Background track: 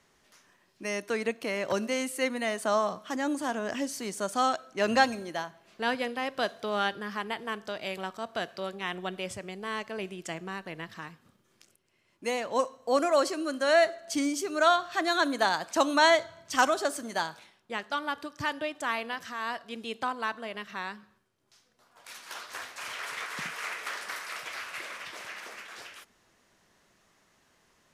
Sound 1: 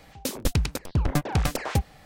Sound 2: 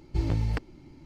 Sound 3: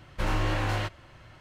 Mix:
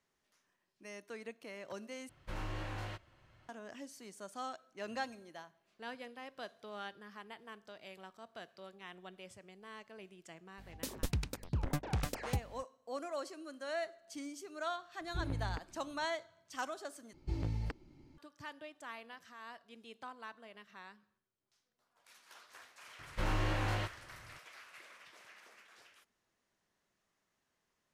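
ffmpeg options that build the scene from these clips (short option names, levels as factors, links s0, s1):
-filter_complex "[3:a]asplit=2[s0][s1];[2:a]asplit=2[s2][s3];[0:a]volume=0.15[s4];[1:a]aeval=exprs='val(0)+0.00708*(sin(2*PI*50*n/s)+sin(2*PI*2*50*n/s)/2+sin(2*PI*3*50*n/s)/3+sin(2*PI*4*50*n/s)/4+sin(2*PI*5*50*n/s)/5)':c=same[s5];[s2]lowpass=2800[s6];[s4]asplit=3[s7][s8][s9];[s7]atrim=end=2.094[s10];[s0]atrim=end=1.4,asetpts=PTS-STARTPTS,volume=0.2[s11];[s8]atrim=start=3.486:end=17.134[s12];[s3]atrim=end=1.05,asetpts=PTS-STARTPTS,volume=0.316[s13];[s9]atrim=start=18.176[s14];[s5]atrim=end=2.05,asetpts=PTS-STARTPTS,volume=0.266,afade=t=in:d=0.004:c=hsin,afade=t=out:st=2.046:d=0.004:c=hsin,adelay=466578S[s15];[s6]atrim=end=1.05,asetpts=PTS-STARTPTS,volume=0.251,afade=t=in:d=0.004:c=hsin,afade=t=out:st=1.046:d=0.004:c=hsin,adelay=15000[s16];[s1]atrim=end=1.4,asetpts=PTS-STARTPTS,volume=0.473,afade=t=in:d=0.004:c=hsin,afade=t=out:st=1.396:d=0.004:c=hsin,adelay=22990[s17];[s10][s11]acrossfade=d=0.004:c1=hsin:c2=hsin[s18];[s18][s12]acrossfade=d=0.004:c1=hsin:c2=hsin[s19];[s19][s13]acrossfade=d=0.004:c1=hsin:c2=hsin[s20];[s20][s14]acrossfade=d=0.004:c1=hsin:c2=hsin[s21];[s21][s15][s16][s17]amix=inputs=4:normalize=0"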